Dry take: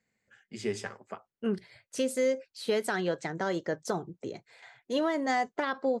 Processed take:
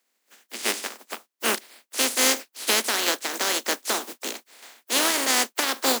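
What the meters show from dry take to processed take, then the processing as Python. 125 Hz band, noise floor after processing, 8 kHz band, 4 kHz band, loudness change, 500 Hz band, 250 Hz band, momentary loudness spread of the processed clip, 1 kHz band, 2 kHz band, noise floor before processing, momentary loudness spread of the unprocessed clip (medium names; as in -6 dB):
under -10 dB, -77 dBFS, +21.0 dB, +18.0 dB, +8.5 dB, -1.0 dB, -1.0 dB, 13 LU, +5.0 dB, +10.0 dB, under -85 dBFS, 13 LU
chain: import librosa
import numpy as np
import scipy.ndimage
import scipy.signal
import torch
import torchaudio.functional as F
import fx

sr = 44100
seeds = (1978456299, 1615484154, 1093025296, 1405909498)

y = fx.spec_flatten(x, sr, power=0.24)
y = scipy.signal.sosfilt(scipy.signal.butter(12, 220.0, 'highpass', fs=sr, output='sos'), y)
y = y * 10.0 ** (6.5 / 20.0)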